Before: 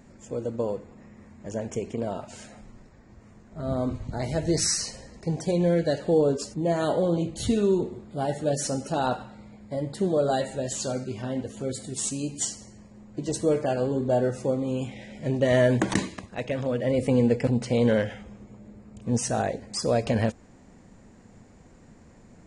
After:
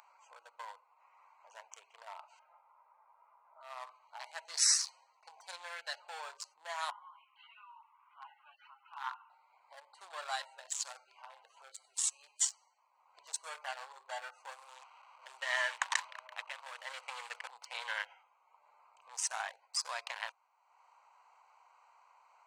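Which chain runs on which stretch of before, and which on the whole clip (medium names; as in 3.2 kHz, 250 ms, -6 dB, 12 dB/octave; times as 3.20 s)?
2.39–3.61 s: low-pass 1.3 kHz + comb of notches 370 Hz
6.90–9.30 s: elliptic band-pass 1–3 kHz, stop band 50 dB + distance through air 74 m
14.51–17.44 s: send-on-delta sampling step -37 dBFS + steep low-pass 8.8 kHz 48 dB/octave + repeats whose band climbs or falls 168 ms, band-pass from 2.8 kHz, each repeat -0.7 oct, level -8.5 dB
whole clip: local Wiener filter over 25 samples; elliptic high-pass 940 Hz, stop band 70 dB; upward compressor, threshold -54 dBFS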